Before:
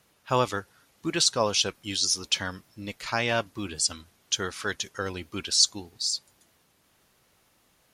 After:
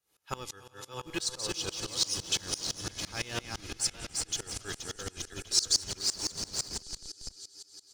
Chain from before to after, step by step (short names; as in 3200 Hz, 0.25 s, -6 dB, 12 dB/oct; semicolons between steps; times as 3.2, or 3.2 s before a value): regenerating reverse delay 0.334 s, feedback 43%, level -4 dB; tone controls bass -2 dB, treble +7 dB; comb 2.4 ms, depth 43%; dynamic EQ 730 Hz, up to -8 dB, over -40 dBFS, Q 0.74; on a send: swelling echo 94 ms, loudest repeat 5, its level -17.5 dB; on the sum: wow and flutter 28 cents; in parallel at -9 dB: Schmitt trigger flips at -23.5 dBFS; on the sum: dB-ramp tremolo swelling 5.9 Hz, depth 23 dB; gain -4.5 dB